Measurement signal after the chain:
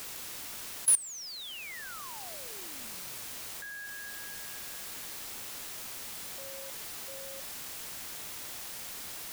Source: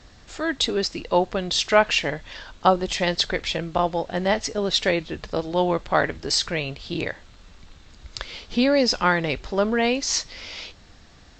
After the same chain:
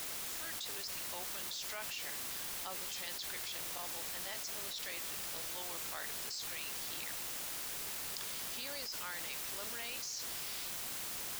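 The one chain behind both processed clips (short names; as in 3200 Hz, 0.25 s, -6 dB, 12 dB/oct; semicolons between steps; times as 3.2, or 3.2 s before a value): differentiator; requantised 6-bit, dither triangular; level quantiser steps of 21 dB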